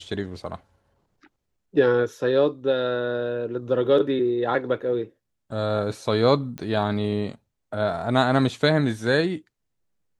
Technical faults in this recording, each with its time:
0:06.58: click −20 dBFS

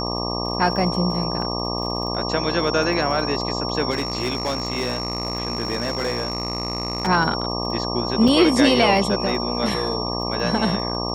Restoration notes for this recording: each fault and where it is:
mains buzz 60 Hz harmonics 20 −27 dBFS
surface crackle 42 per second −32 dBFS
whistle 5,500 Hz −28 dBFS
0:03.90–0:07.08: clipping −18.5 dBFS
0:08.28: drop-out 3.5 ms

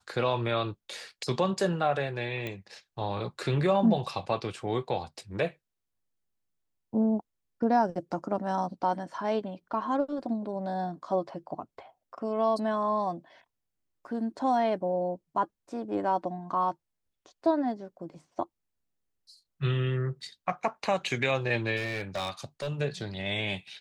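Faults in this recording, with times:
0:02.47: click −22 dBFS
0:21.76–0:22.68: clipping −28 dBFS

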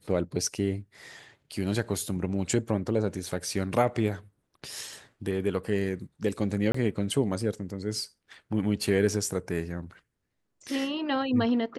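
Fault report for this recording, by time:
0:06.72–0:06.74: drop-out 24 ms

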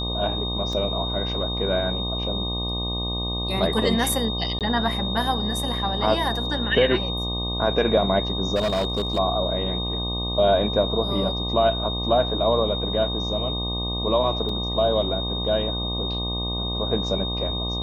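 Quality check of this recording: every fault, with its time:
mains buzz 60 Hz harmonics 20 −29 dBFS
whistle 3,700 Hz −28 dBFS
0:00.73: drop-out 2.1 ms
0:04.59–0:04.61: drop-out 18 ms
0:08.55–0:09.19: clipping −19 dBFS
0:14.49: drop-out 3.2 ms

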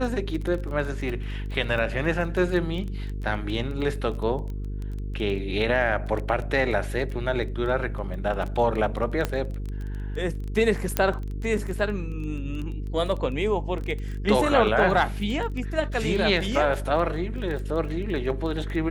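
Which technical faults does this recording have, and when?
mains buzz 50 Hz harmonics 9 −31 dBFS
surface crackle 14 per second −30 dBFS
0:09.25: click −11 dBFS
0:10.97: click −7 dBFS

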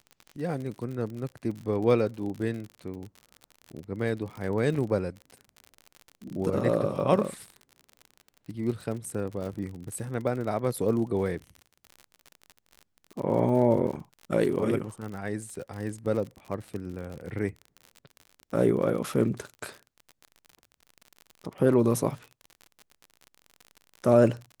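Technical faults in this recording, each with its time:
surface crackle 53 per second −35 dBFS

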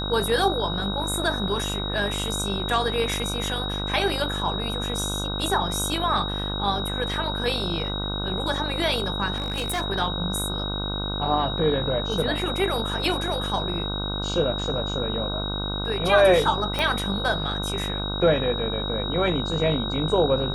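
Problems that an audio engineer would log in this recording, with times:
mains buzz 50 Hz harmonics 31 −30 dBFS
whistle 3,800 Hz −30 dBFS
0:09.36–0:09.82: clipping −22.5 dBFS
0:16.79: click −11 dBFS

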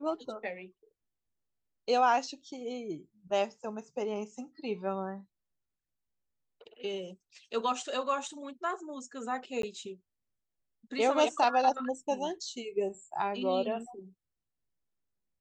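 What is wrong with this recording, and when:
0:09.62–0:09.63: drop-out 13 ms

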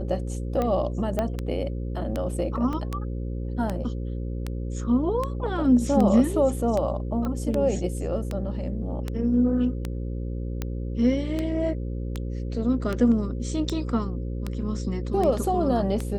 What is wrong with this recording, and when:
mains buzz 60 Hz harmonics 9 −30 dBFS
scratch tick 78 rpm −15 dBFS
0:01.19: click −13 dBFS
0:02.73: drop-out 2.8 ms
0:07.25: click −19 dBFS

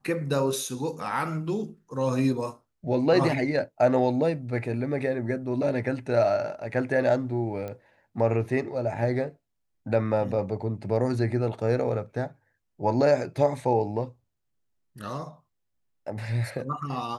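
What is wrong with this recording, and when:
0:07.68: click −23 dBFS

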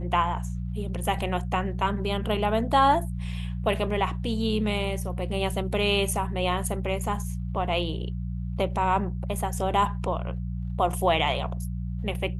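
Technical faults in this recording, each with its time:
mains hum 60 Hz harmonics 3 −31 dBFS

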